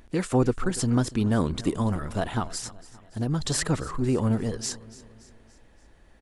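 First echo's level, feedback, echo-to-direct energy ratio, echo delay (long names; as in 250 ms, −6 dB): −19.0 dB, 50%, −18.0 dB, 286 ms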